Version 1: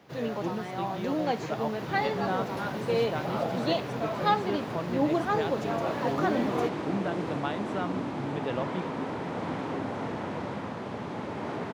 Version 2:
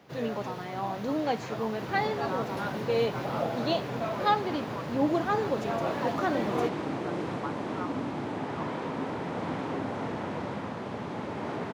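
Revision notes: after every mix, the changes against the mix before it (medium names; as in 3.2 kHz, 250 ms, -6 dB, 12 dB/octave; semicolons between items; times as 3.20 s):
speech: add Butterworth band-pass 1.1 kHz, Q 2.1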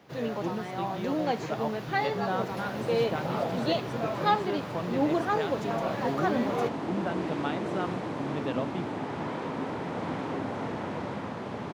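speech: remove Butterworth band-pass 1.1 kHz, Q 2.1; second sound: entry +0.60 s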